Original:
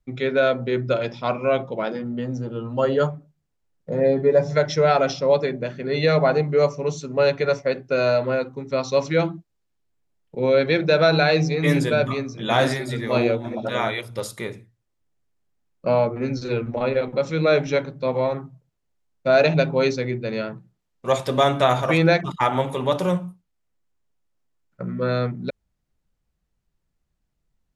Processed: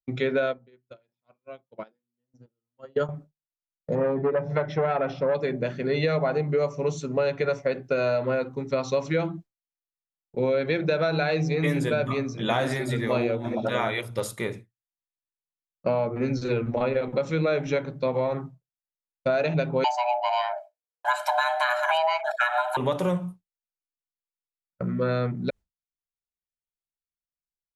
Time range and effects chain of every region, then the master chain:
0.46–3.09 s: square tremolo 1.6 Hz, depth 60%, duty 20% + upward expansion 2.5:1, over -30 dBFS
3.95–5.35 s: low-pass 2.3 kHz + transformer saturation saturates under 630 Hz
19.84–22.77 s: frequency shift +480 Hz + comb 1.3 ms, depth 95%
whole clip: expander -36 dBFS; dynamic bell 4.9 kHz, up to -6 dB, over -46 dBFS, Q 1.7; compression, threshold -22 dBFS; trim +1 dB

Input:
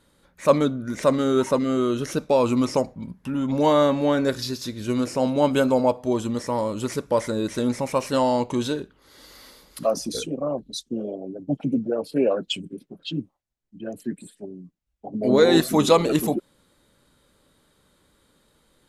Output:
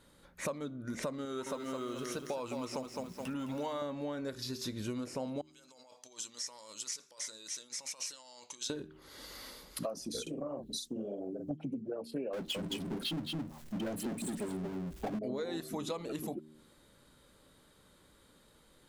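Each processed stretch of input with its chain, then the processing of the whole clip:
1.25–3.82 s: bass shelf 470 Hz -9 dB + bit-crushed delay 212 ms, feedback 35%, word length 8-bit, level -6.5 dB
5.41–8.70 s: compressor with a negative ratio -28 dBFS + band-pass filter 6.1 kHz, Q 1.9
10.22–11.51 s: treble shelf 9 kHz +11 dB + compression 1.5:1, threshold -42 dBFS + doubling 45 ms -5 dB
12.33–15.19 s: delay 217 ms -9 dB + power-law waveshaper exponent 0.5
whole clip: de-hum 77.14 Hz, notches 5; compression 12:1, threshold -34 dBFS; trim -1 dB

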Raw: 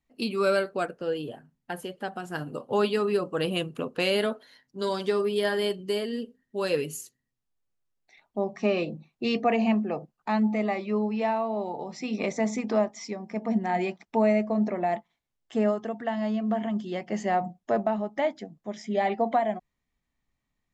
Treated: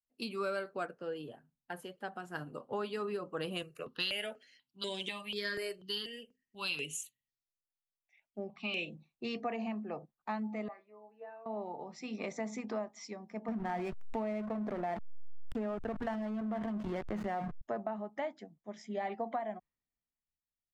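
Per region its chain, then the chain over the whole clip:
3.62–8.95 s: FFT filter 1.5 kHz 0 dB, 2.8 kHz +12 dB, 6.7 kHz +5 dB + stepped phaser 4.1 Hz 900–4700 Hz
10.68–11.46 s: three-band isolator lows -12 dB, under 310 Hz, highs -17 dB, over 2.1 kHz + feedback comb 92 Hz, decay 0.16 s, harmonics odd, mix 100%
13.48–17.61 s: tone controls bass +1 dB, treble -3 dB + hysteresis with a dead band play -31 dBFS + level flattener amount 70%
whole clip: compression 6:1, threshold -26 dBFS; dynamic bell 1.3 kHz, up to +4 dB, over -48 dBFS, Q 1.1; three bands expanded up and down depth 40%; trim -8.5 dB

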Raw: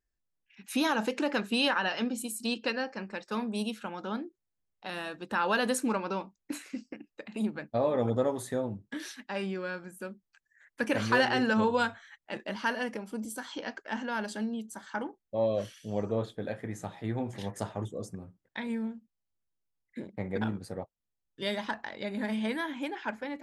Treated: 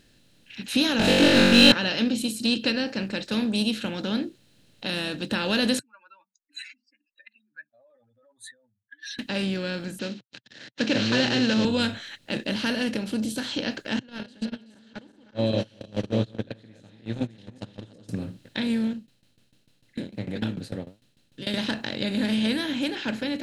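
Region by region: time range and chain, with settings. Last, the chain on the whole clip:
0.99–1.72 s: expander -35 dBFS + overdrive pedal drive 26 dB, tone 2.3 kHz, clips at -15.5 dBFS + flutter echo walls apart 3.6 m, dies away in 1.1 s
5.79–9.19 s: spectral contrast enhancement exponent 3.5 + elliptic high-pass 1.5 kHz, stop band 70 dB
9.99–11.65 s: CVSD coder 32 kbps + high-pass 190 Hz
13.99–18.09 s: backward echo that repeats 189 ms, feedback 44%, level -6 dB + gate -30 dBFS, range -39 dB + low-pass 5.9 kHz
18.93–21.54 s: flange 1.3 Hz, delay 3.1 ms, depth 9 ms, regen +67% + tremolo saw down 6.7 Hz, depth 95%
whole clip: spectral levelling over time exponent 0.6; ten-band graphic EQ 125 Hz +12 dB, 250 Hz +3 dB, 1 kHz -9 dB, 4 kHz +9 dB; trim -2 dB

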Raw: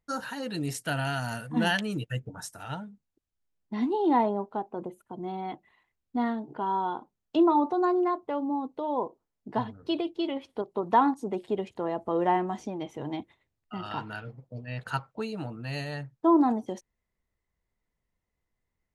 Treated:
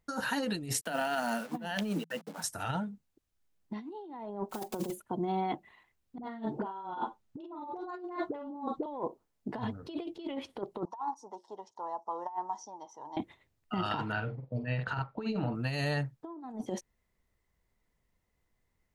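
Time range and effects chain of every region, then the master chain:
0.81–2.44 s: send-on-delta sampling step -44 dBFS + rippled Chebyshev high-pass 160 Hz, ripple 6 dB
4.49–5.00 s: block-companded coder 5-bit + treble shelf 5.1 kHz +10.5 dB + comb 5.4 ms, depth 80%
6.18–8.86 s: treble shelf 8.7 kHz -6.5 dB + phase dispersion highs, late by 57 ms, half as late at 580 Hz + multi-tap echo 40/49/58 ms -7/-5/-14 dB
10.85–13.17 s: two resonant band-passes 2.3 kHz, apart 2.6 oct + peaking EQ 2 kHz +7.5 dB 0.41 oct
14.12–15.55 s: distance through air 190 m + doubling 46 ms -8.5 dB
whole clip: peak limiter -22.5 dBFS; compressor with a negative ratio -35 dBFS, ratio -0.5; trim +1 dB

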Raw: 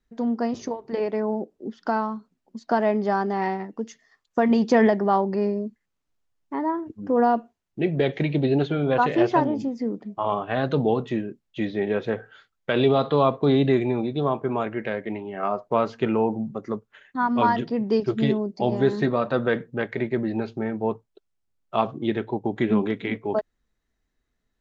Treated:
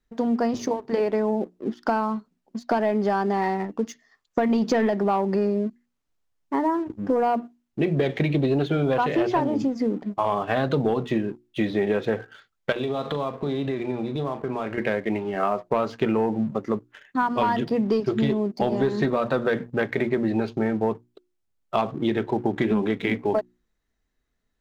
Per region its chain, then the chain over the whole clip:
12.72–14.78 s: compression, threshold -30 dBFS + doubling 40 ms -12 dB
whole clip: hum notches 60/120/180/240/300/360 Hz; waveshaping leveller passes 1; compression, threshold -21 dBFS; trim +2 dB

